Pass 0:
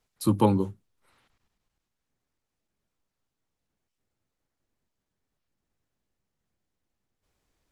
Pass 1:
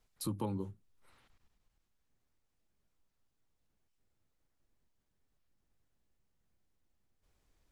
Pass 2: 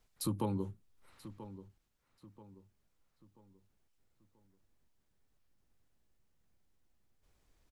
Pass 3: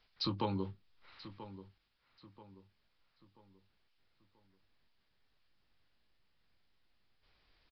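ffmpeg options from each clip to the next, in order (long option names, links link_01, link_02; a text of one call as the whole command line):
ffmpeg -i in.wav -af "lowshelf=frequency=66:gain=9,alimiter=limit=-17dB:level=0:latency=1:release=425,acompressor=threshold=-44dB:ratio=1.5,volume=-2dB" out.wav
ffmpeg -i in.wav -filter_complex "[0:a]asplit=2[link_01][link_02];[link_02]adelay=984,lowpass=frequency=3600:poles=1,volume=-14dB,asplit=2[link_03][link_04];[link_04]adelay=984,lowpass=frequency=3600:poles=1,volume=0.4,asplit=2[link_05][link_06];[link_06]adelay=984,lowpass=frequency=3600:poles=1,volume=0.4,asplit=2[link_07][link_08];[link_08]adelay=984,lowpass=frequency=3600:poles=1,volume=0.4[link_09];[link_01][link_03][link_05][link_07][link_09]amix=inputs=5:normalize=0,volume=2dB" out.wav
ffmpeg -i in.wav -filter_complex "[0:a]tiltshelf=frequency=970:gain=-6.5,asplit=2[link_01][link_02];[link_02]adelay=21,volume=-12dB[link_03];[link_01][link_03]amix=inputs=2:normalize=0,aresample=11025,aresample=44100,volume=3.5dB" out.wav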